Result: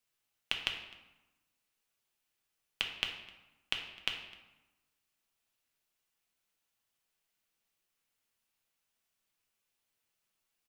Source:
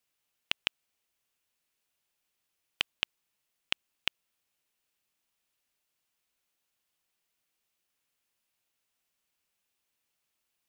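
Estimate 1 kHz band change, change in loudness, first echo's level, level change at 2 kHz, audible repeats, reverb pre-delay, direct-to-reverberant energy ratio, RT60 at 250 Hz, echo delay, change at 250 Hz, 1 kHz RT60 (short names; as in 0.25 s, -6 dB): -1.0 dB, -2.5 dB, -22.5 dB, -1.5 dB, 1, 5 ms, 2.0 dB, 1.2 s, 0.257 s, -1.5 dB, 1.1 s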